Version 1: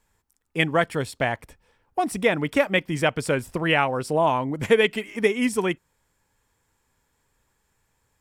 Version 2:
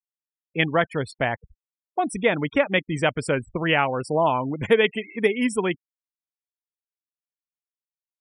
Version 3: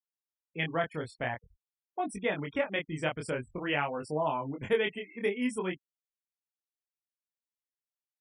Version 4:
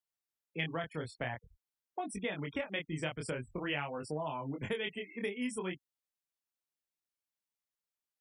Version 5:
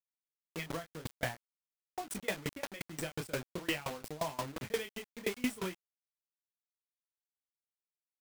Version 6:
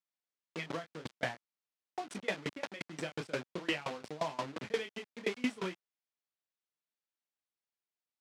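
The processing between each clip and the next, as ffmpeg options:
-af "afftfilt=real='re*gte(hypot(re,im),0.0224)':imag='im*gte(hypot(re,im),0.0224)':win_size=1024:overlap=0.75"
-af "flanger=delay=19.5:depth=6.1:speed=0.49,volume=-7dB"
-filter_complex "[0:a]acrossover=split=140|3000[a][b][c];[b]acompressor=threshold=-35dB:ratio=6[d];[a][d][c]amix=inputs=3:normalize=0"
-af "acrusher=bits=6:mix=0:aa=0.000001,volume=29dB,asoftclip=hard,volume=-29dB,aeval=exprs='val(0)*pow(10,-24*if(lt(mod(5.7*n/s,1),2*abs(5.7)/1000),1-mod(5.7*n/s,1)/(2*abs(5.7)/1000),(mod(5.7*n/s,1)-2*abs(5.7)/1000)/(1-2*abs(5.7)/1000))/20)':c=same,volume=7dB"
-af "highpass=160,lowpass=5.1k,volume=1dB"

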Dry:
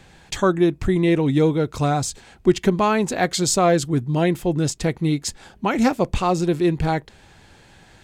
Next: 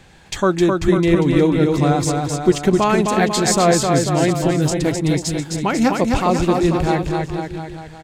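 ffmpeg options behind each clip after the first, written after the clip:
-af "aecho=1:1:260|494|704.6|894.1|1065:0.631|0.398|0.251|0.158|0.1,volume=1.5dB"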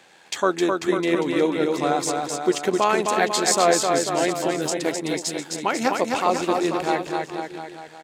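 -af "tremolo=f=83:d=0.4,highpass=390"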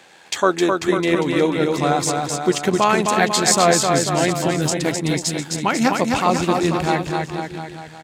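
-af "asubboost=boost=6.5:cutoff=160,volume=4.5dB"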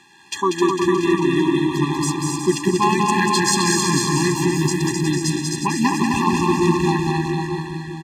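-filter_complex "[0:a]asplit=2[a][b];[b]aecho=0:1:190|361|514.9|653.4|778.1:0.631|0.398|0.251|0.158|0.1[c];[a][c]amix=inputs=2:normalize=0,afftfilt=real='re*eq(mod(floor(b*sr/1024/400),2),0)':imag='im*eq(mod(floor(b*sr/1024/400),2),0)':win_size=1024:overlap=0.75"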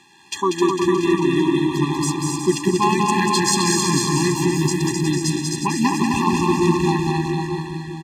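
-af "equalizer=f=1.5k:w=5.1:g=-10.5"

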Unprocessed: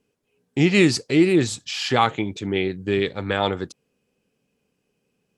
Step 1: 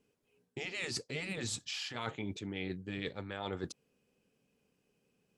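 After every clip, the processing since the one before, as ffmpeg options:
-af "afftfilt=real='re*lt(hypot(re,im),0.631)':imag='im*lt(hypot(re,im),0.631)':win_size=1024:overlap=0.75,areverse,acompressor=threshold=-31dB:ratio=12,areverse,volume=-4dB"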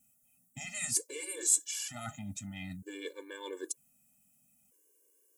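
-af "aexciter=amount=11.1:drive=7.1:freq=6.7k,afftfilt=real='re*gt(sin(2*PI*0.53*pts/sr)*(1-2*mod(floor(b*sr/1024/300),2)),0)':imag='im*gt(sin(2*PI*0.53*pts/sr)*(1-2*mod(floor(b*sr/1024/300),2)),0)':win_size=1024:overlap=0.75"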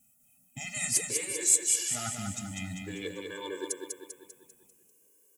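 -af "aecho=1:1:197|394|591|788|985|1182:0.596|0.292|0.143|0.0701|0.0343|0.0168,volume=3.5dB"

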